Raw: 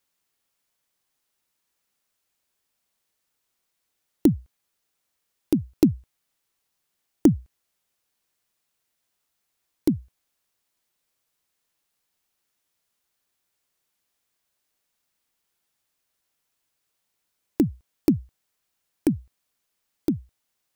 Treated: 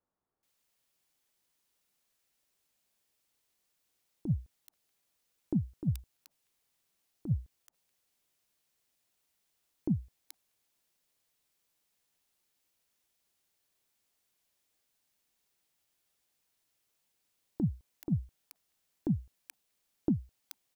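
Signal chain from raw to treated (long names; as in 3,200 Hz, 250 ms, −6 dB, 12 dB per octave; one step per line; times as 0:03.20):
dynamic equaliser 790 Hz, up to −6 dB, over −39 dBFS, Q 0.93
compressor whose output falls as the input rises −22 dBFS, ratio −0.5
multiband delay without the direct sound lows, highs 430 ms, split 1,300 Hz
level −5 dB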